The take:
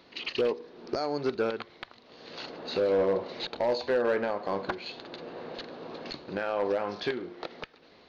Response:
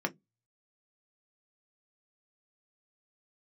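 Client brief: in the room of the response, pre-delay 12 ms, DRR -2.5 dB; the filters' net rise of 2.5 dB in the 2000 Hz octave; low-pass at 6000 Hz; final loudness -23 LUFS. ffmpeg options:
-filter_complex "[0:a]lowpass=6k,equalizer=f=2k:t=o:g=3.5,asplit=2[a][b];[1:a]atrim=start_sample=2205,adelay=12[c];[b][c]afir=irnorm=-1:irlink=0,volume=-3.5dB[d];[a][d]amix=inputs=2:normalize=0,volume=4dB"

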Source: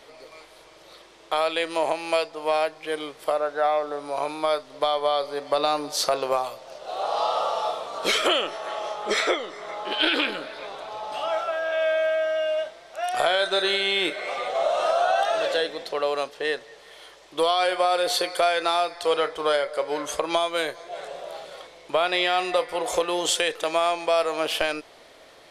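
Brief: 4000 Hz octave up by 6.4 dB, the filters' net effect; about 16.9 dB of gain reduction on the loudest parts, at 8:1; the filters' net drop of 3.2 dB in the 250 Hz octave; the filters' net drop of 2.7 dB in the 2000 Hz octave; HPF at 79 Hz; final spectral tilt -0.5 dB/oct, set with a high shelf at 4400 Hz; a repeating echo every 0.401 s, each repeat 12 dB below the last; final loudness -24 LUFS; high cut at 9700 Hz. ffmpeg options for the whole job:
-af "highpass=79,lowpass=9.7k,equalizer=f=250:t=o:g=-5,equalizer=f=2k:t=o:g=-7.5,equalizer=f=4k:t=o:g=7,highshelf=f=4.4k:g=7.5,acompressor=threshold=-32dB:ratio=8,aecho=1:1:401|802|1203:0.251|0.0628|0.0157,volume=11dB"

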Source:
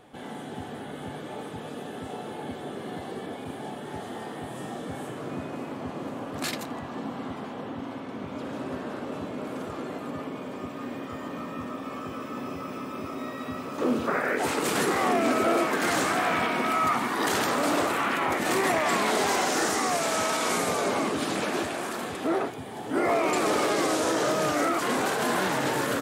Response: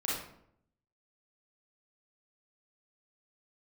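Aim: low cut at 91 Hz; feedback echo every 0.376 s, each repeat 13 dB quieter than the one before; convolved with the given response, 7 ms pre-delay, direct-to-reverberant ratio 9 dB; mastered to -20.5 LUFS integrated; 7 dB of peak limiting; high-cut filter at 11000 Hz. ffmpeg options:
-filter_complex "[0:a]highpass=91,lowpass=11k,alimiter=limit=-20dB:level=0:latency=1,aecho=1:1:376|752|1128:0.224|0.0493|0.0108,asplit=2[a][b];[1:a]atrim=start_sample=2205,adelay=7[c];[b][c]afir=irnorm=-1:irlink=0,volume=-14.5dB[d];[a][d]amix=inputs=2:normalize=0,volume=10dB"

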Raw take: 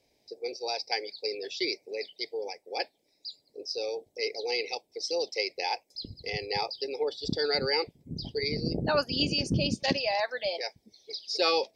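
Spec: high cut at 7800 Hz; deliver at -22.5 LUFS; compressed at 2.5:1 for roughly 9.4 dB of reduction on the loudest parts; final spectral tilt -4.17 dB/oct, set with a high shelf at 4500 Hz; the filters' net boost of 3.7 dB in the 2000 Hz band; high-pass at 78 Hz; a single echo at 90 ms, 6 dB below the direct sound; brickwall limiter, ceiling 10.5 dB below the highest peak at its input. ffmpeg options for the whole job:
-af "highpass=78,lowpass=7.8k,equalizer=f=2k:t=o:g=5.5,highshelf=f=4.5k:g=-4.5,acompressor=threshold=-35dB:ratio=2.5,alimiter=level_in=5dB:limit=-24dB:level=0:latency=1,volume=-5dB,aecho=1:1:90:0.501,volume=16dB"

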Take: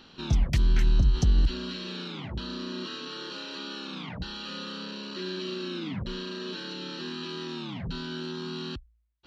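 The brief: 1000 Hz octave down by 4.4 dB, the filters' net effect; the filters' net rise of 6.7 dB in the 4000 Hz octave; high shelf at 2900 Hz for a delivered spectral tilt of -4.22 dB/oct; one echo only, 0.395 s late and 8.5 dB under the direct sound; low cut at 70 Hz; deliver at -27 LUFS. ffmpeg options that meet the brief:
-af "highpass=70,equalizer=f=1k:t=o:g=-7,highshelf=f=2.9k:g=5,equalizer=f=4k:t=o:g=4.5,aecho=1:1:395:0.376,volume=4dB"

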